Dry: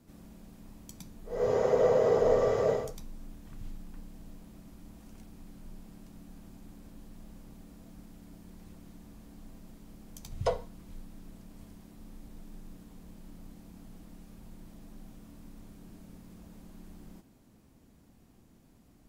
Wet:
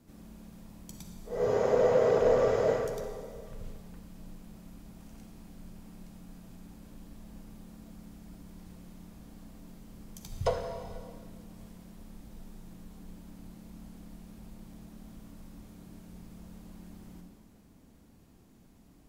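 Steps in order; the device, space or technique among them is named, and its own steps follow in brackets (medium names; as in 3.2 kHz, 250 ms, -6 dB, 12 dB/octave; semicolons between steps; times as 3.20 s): saturated reverb return (on a send at -3.5 dB: reverberation RT60 1.9 s, pre-delay 39 ms + saturation -27.5 dBFS, distortion -8 dB)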